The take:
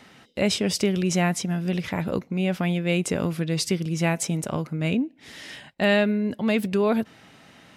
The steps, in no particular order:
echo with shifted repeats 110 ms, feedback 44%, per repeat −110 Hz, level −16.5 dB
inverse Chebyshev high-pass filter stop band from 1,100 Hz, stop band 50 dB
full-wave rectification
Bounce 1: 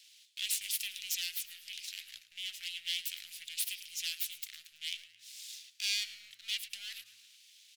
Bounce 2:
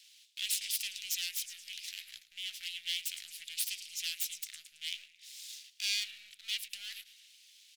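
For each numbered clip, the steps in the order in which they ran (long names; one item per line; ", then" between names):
full-wave rectification, then inverse Chebyshev high-pass filter, then echo with shifted repeats
echo with shifted repeats, then full-wave rectification, then inverse Chebyshev high-pass filter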